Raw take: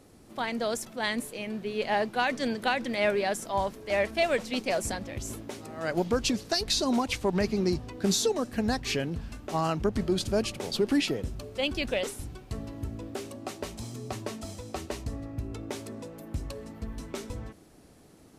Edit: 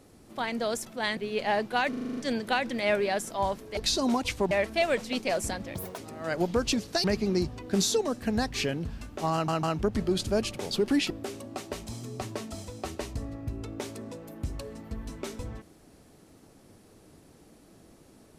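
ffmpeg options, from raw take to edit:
-filter_complex "[0:a]asplit=17[a][b][c][d][e][f][g][h][i][j][k][l][m][n][o][p][q];[a]atrim=end=1.172[r];[b]atrim=start=1.598:end=2.362[s];[c]atrim=start=2.318:end=2.362[t];[d]atrim=start=2.318:end=2.362[u];[e]atrim=start=2.318:end=2.362[v];[f]atrim=start=2.318:end=2.362[w];[g]atrim=start=2.318:end=2.362[x];[h]atrim=start=2.318:end=2.362[y];[i]atrim=start=2.318:end=3.922[z];[j]atrim=start=6.608:end=7.352[aa];[k]atrim=start=3.918:end=5.164[ab];[l]atrim=start=5.16:end=5.55,asetpts=PTS-STARTPTS,asetrate=74088,aresample=44100[ac];[m]atrim=start=5.546:end=6.612[ad];[n]atrim=start=7.348:end=9.792[ae];[o]atrim=start=9.638:end=9.792[af];[p]atrim=start=9.638:end=11.112[ag];[q]atrim=start=13.008[ah];[r][s]acrossfade=d=0.004:c1=hsin:c2=hsin[ai];[ai][t]acrossfade=d=0.004:c1=hsin:c2=hsin[aj];[aj][u]acrossfade=d=0.004:c1=hsin:c2=hsin[ak];[ak][v]acrossfade=d=0.004:c1=hsin:c2=hsin[al];[al][w]acrossfade=d=0.004:c1=hsin:c2=hsin[am];[am][x]acrossfade=d=0.004:c1=hsin:c2=hsin[an];[an][y]acrossfade=d=0.004:c1=hsin:c2=hsin[ao];[ao][z]acrossfade=d=0.004:c1=hsin:c2=hsin[ap];[ap][aa]acrossfade=d=0.004:c1=hsin:c2=hsin[aq];[aq][ab]acrossfade=d=0.004:c1=hsin:c2=hsin[ar];[ar][ac]acrossfade=d=0.004:c1=hsin:c2=hsin[as];[as][ad]acrossfade=d=0.004:c1=hsin:c2=hsin[at];[at][ae]acrossfade=d=0.004:c1=hsin:c2=hsin[au];[au][af]acrossfade=d=0.004:c1=hsin:c2=hsin[av];[av][ag]acrossfade=d=0.004:c1=hsin:c2=hsin[aw];[aw][ah]acrossfade=d=0.004:c1=hsin:c2=hsin"

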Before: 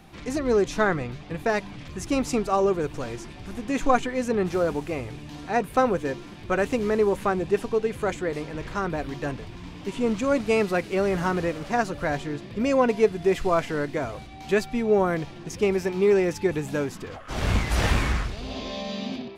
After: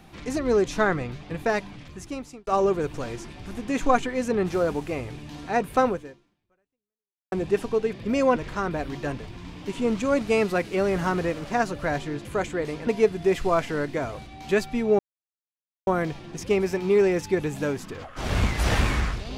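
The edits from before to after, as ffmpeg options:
-filter_complex "[0:a]asplit=8[a][b][c][d][e][f][g][h];[a]atrim=end=2.47,asetpts=PTS-STARTPTS,afade=t=out:st=1.52:d=0.95[i];[b]atrim=start=2.47:end=7.32,asetpts=PTS-STARTPTS,afade=t=in:d=0.004:c=hsin,afade=t=out:st=3.41:d=1.44:c=exp[j];[c]atrim=start=7.32:end=7.932,asetpts=PTS-STARTPTS,afade=t=in:d=0.004:c=hsin[k];[d]atrim=start=12.438:end=12.872[l];[e]atrim=start=8.548:end=12.442[m];[f]atrim=start=7.928:end=8.552[n];[g]atrim=start=12.868:end=14.99,asetpts=PTS-STARTPTS,afade=t=out:st=2.118:d=0.004:c=hsin,apad=pad_dur=0.88[o];[h]atrim=start=14.99,asetpts=PTS-STARTPTS,afade=t=in:d=0.004:c=hsin[p];[i][j][k]concat=n=3:v=0:a=1[q];[q][l]acrossfade=d=0.004:c1=hsin:c2=hsin[r];[r][m]acrossfade=d=0.004:c1=hsin:c2=hsin[s];[s][n]acrossfade=d=0.004:c1=hsin:c2=hsin[t];[o][p]concat=n=2:v=0:a=1[u];[t][u]acrossfade=d=0.004:c1=hsin:c2=hsin"

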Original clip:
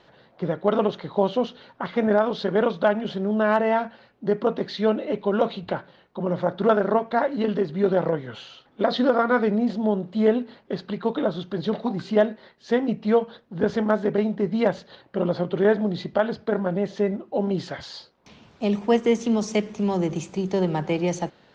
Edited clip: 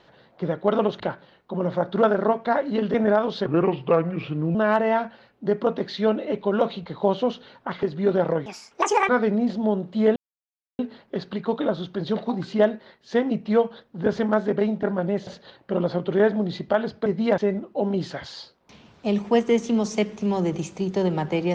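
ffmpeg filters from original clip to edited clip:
-filter_complex "[0:a]asplit=14[a][b][c][d][e][f][g][h][i][j][k][l][m][n];[a]atrim=end=1.002[o];[b]atrim=start=5.658:end=7.602[p];[c]atrim=start=1.968:end=2.494[q];[d]atrim=start=2.49:end=3.35,asetpts=PTS-STARTPTS,asetrate=34839,aresample=44100[r];[e]atrim=start=3.346:end=5.662[s];[f]atrim=start=0.998:end=1.972[t];[g]atrim=start=7.598:end=8.234[u];[h]atrim=start=8.23:end=9.29,asetpts=PTS-STARTPTS,asetrate=74088,aresample=44100[v];[i]atrim=start=9.286:end=10.36,asetpts=PTS-STARTPTS,afade=t=out:st=1.07:d=0.004:c=hsin,apad=pad_dur=0.63[w];[j]atrim=start=10.36:end=14.402,asetpts=PTS-STARTPTS,afade=t=in:d=0.004:c=hsin[x];[k]atrim=start=16.508:end=16.952[y];[l]atrim=start=14.718:end=16.512[z];[m]atrim=start=14.398:end=14.722[aa];[n]atrim=start=16.948[ab];[o][p]acrossfade=d=0.004:c1=hsin:c2=hsin[ac];[ac][q]acrossfade=d=0.004:c1=hsin:c2=hsin[ad];[ad][r]acrossfade=d=0.004:c1=hsin:c2=hsin[ae];[ae][s]acrossfade=d=0.004:c1=hsin:c2=hsin[af];[af][t]acrossfade=d=0.004:c1=hsin:c2=hsin[ag];[ag][u]acrossfade=d=0.004:c1=hsin:c2=hsin[ah];[ah][v]acrossfade=d=0.004:c1=hsin:c2=hsin[ai];[w][x]concat=n=2:v=0:a=1[aj];[ai][aj]acrossfade=d=0.004:c1=hsin:c2=hsin[ak];[ak][y]acrossfade=d=0.004:c1=hsin:c2=hsin[al];[al][z]acrossfade=d=0.004:c1=hsin:c2=hsin[am];[am][aa]acrossfade=d=0.004:c1=hsin:c2=hsin[an];[an][ab]acrossfade=d=0.004:c1=hsin:c2=hsin"

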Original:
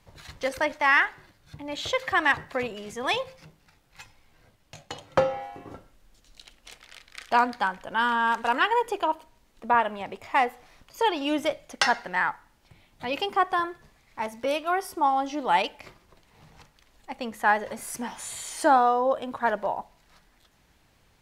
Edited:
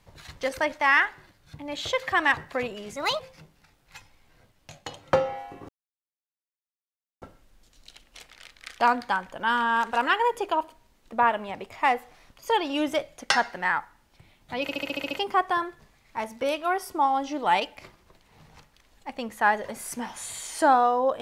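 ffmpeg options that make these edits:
-filter_complex "[0:a]asplit=11[a][b][c][d][e][f][g][h][i][j][k];[a]atrim=end=2.964[l];[b]atrim=start=2.96:end=3.24,asetpts=PTS-STARTPTS,asetrate=52038,aresample=44100,atrim=end_sample=10464,asetpts=PTS-STARTPTS[m];[c]atrim=start=3.236:end=5.73,asetpts=PTS-STARTPTS,afade=t=out:st=2.49:d=0.004:c=hsin,apad=pad_dur=1.53[n];[d]atrim=start=5.73:end=13.202,asetpts=PTS-STARTPTS,afade=t=in:d=0.004:c=hsin[o];[e]atrim=start=13.128:end=13.202[p];[f]atrim=start=13.128:end=13.202[q];[g]atrim=start=13.128:end=13.202[r];[h]atrim=start=13.128:end=13.202[s];[i]atrim=start=13.128:end=13.202[t];[j]atrim=start=13.128:end=13.202[u];[k]atrim=start=13.128[v];[l][m]acrossfade=d=0.004:c1=hsin:c2=hsin[w];[n][o]concat=n=2:v=0:a=1[x];[w][x]acrossfade=d=0.004:c1=hsin:c2=hsin[y];[y][p]acrossfade=d=0.004:c1=hsin:c2=hsin[z];[z][q]acrossfade=d=0.004:c1=hsin:c2=hsin[aa];[aa][r]acrossfade=d=0.004:c1=hsin:c2=hsin[ab];[ab][s]acrossfade=d=0.004:c1=hsin:c2=hsin[ac];[ac][t]acrossfade=d=0.004:c1=hsin:c2=hsin[ad];[ad][u]acrossfade=d=0.004:c1=hsin:c2=hsin[ae];[ae][v]acrossfade=d=0.004:c1=hsin:c2=hsin"

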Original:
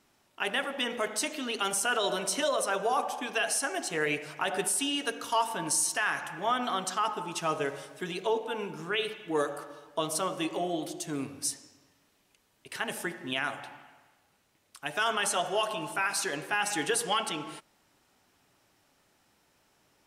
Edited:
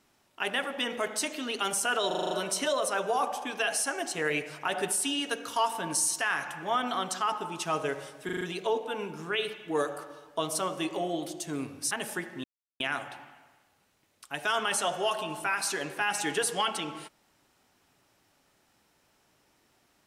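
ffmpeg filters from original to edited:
-filter_complex "[0:a]asplit=13[a][b][c][d][e][f][g][h][i][j][k][l][m];[a]atrim=end=2.112[n];[b]atrim=start=2.068:end=2.112[o];[c]atrim=start=2.068:end=2.112[p];[d]atrim=start=2.068:end=2.112[q];[e]atrim=start=2.068:end=2.112[r];[f]atrim=start=2.068:end=2.112[s];[g]atrim=start=2.068:end=8.052[t];[h]atrim=start=8.008:end=8.052[u];[i]atrim=start=8.008:end=8.052[v];[j]atrim=start=8.008:end=8.052[w];[k]atrim=start=8.008:end=11.512[x];[l]atrim=start=12.788:end=13.32,asetpts=PTS-STARTPTS,afade=t=out:st=0.528:d=0.004:c=hsin,apad=pad_dur=0.36[y];[m]atrim=start=13.32,asetpts=PTS-STARTPTS,afade=t=in:d=0.004:c=hsin[z];[n][o]acrossfade=d=0.004:c1=hsin:c2=hsin[aa];[aa][p]acrossfade=d=0.004:c1=hsin:c2=hsin[ab];[ab][q]acrossfade=d=0.004:c1=hsin:c2=hsin[ac];[ac][r]acrossfade=d=0.004:c1=hsin:c2=hsin[ad];[ad][s]acrossfade=d=0.004:c1=hsin:c2=hsin[ae];[ae][t]acrossfade=d=0.004:c1=hsin:c2=hsin[af];[af][u]acrossfade=d=0.004:c1=hsin:c2=hsin[ag];[ag][v]acrossfade=d=0.004:c1=hsin:c2=hsin[ah];[ah][w]acrossfade=d=0.004:c1=hsin:c2=hsin[ai];[ai][x]acrossfade=d=0.004:c1=hsin:c2=hsin[aj];[y][z]concat=n=2:v=0:a=1[ak];[aj][ak]acrossfade=d=0.004:c1=hsin:c2=hsin"

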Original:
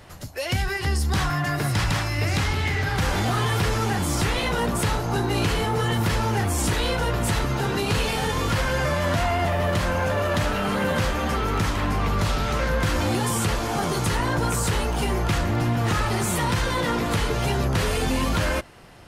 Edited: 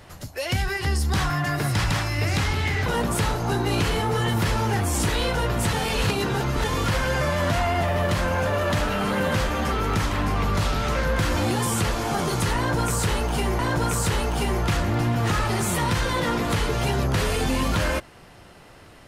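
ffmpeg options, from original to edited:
-filter_complex "[0:a]asplit=5[a][b][c][d][e];[a]atrim=end=2.862[f];[b]atrim=start=4.498:end=7.372[g];[c]atrim=start=7.368:end=8.282,asetpts=PTS-STARTPTS,areverse[h];[d]atrim=start=8.278:end=15.232[i];[e]atrim=start=14.198[j];[f][g]acrossfade=d=0.004:c1=hsin:c2=hsin[k];[k][h]acrossfade=d=0.004:c1=hsin:c2=hsin[l];[l][i]acrossfade=d=0.004:c1=hsin:c2=hsin[m];[m][j]acrossfade=d=0.004:c1=hsin:c2=hsin"

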